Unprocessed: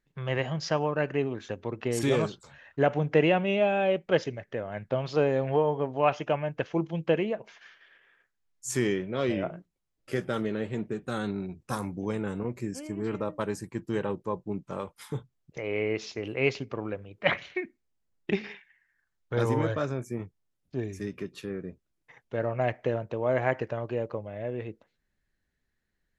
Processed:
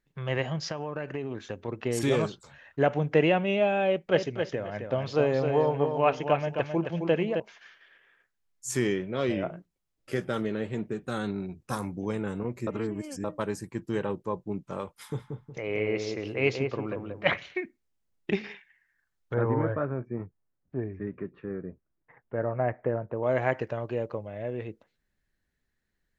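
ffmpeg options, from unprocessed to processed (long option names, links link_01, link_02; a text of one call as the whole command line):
ffmpeg -i in.wav -filter_complex "[0:a]asettb=1/sr,asplit=3[link_01][link_02][link_03];[link_01]atrim=end=0.694[link_04];[link_02]atrim=start=0.69:end=1.68,asetpts=PTS-STARTPTS,afade=type=in:duration=0.004:curve=qsin,afade=type=out:start_time=0.986:duration=0.004:curve=qsin,acompressor=threshold=-28dB:ratio=12:attack=3.2:release=140:knee=1:detection=peak[link_05];[link_03]atrim=start=1.676[link_06];[link_04][link_05]acrossfade=duration=0.004:curve1=hsin:curve2=qsin[link_07];[link_07][link_06]acrossfade=duration=0.004:curve1=qsin:curve2=hsin,asettb=1/sr,asplit=3[link_08][link_09][link_10];[link_08]atrim=end=3.884[link_11];[link_09]atrim=start=3.88:end=7.4,asetpts=PTS-STARTPTS,afade=type=in:duration=0.004:curve=qsin,afade=type=out:start_time=3.516:duration=0.004:curve=qsin,aecho=1:1:265|530|795:0.501|0.105|0.0221,atrim=end_sample=155232[link_12];[link_10]atrim=start=7.396[link_13];[link_11][link_12]acrossfade=duration=0.004:curve1=hsin:curve2=qsin[link_14];[link_14][link_13]acrossfade=duration=0.004:curve1=qsin:curve2=hsin,asettb=1/sr,asplit=3[link_15][link_16][link_17];[link_15]atrim=end=14.914[link_18];[link_16]atrim=start=14.91:end=17.38,asetpts=PTS-STARTPTS,afade=type=in:duration=0.004:curve=qsin,afade=type=out:start_time=2.466:duration=0.004:curve=qsin,asplit=2[link_19][link_20];[link_20]adelay=182,lowpass=frequency=1100:poles=1,volume=-4dB,asplit=2[link_21][link_22];[link_22]adelay=182,lowpass=frequency=1100:poles=1,volume=0.34,asplit=2[link_23][link_24];[link_24]adelay=182,lowpass=frequency=1100:poles=1,volume=0.34,asplit=2[link_25][link_26];[link_26]adelay=182,lowpass=frequency=1100:poles=1,volume=0.34[link_27];[link_19][link_21][link_23][link_25][link_27]amix=inputs=5:normalize=0,atrim=end_sample=108927[link_28];[link_17]atrim=start=17.376[link_29];[link_18][link_28]acrossfade=duration=0.004:curve1=hsin:curve2=qsin[link_30];[link_30][link_29]acrossfade=duration=0.004:curve1=qsin:curve2=hsin,asettb=1/sr,asplit=3[link_31][link_32][link_33];[link_31]atrim=end=19.344[link_34];[link_32]atrim=start=19.34:end=23.23,asetpts=PTS-STARTPTS,afade=type=in:duration=0.004:curve=qsin,afade=type=out:start_time=3.886:duration=0.004:curve=qsin,lowpass=frequency=1800:width=0.5412,lowpass=frequency=1800:width=1.3066[link_35];[link_33]atrim=start=23.226[link_36];[link_34][link_35]acrossfade=duration=0.004:curve1=hsin:curve2=qsin[link_37];[link_37][link_36]acrossfade=duration=0.004:curve1=qsin:curve2=hsin,asplit=3[link_38][link_39][link_40];[link_38]atrim=end=12.672[link_41];[link_39]atrim=start=12.668:end=13.242,asetpts=PTS-STARTPTS,areverse[link_42];[link_40]atrim=start=13.238[link_43];[link_41][link_42]acrossfade=duration=0.004:curve1=hsin:curve2=hsin[link_44];[link_44][link_43]acrossfade=duration=0.004:curve1=hsin:curve2=hsin" out.wav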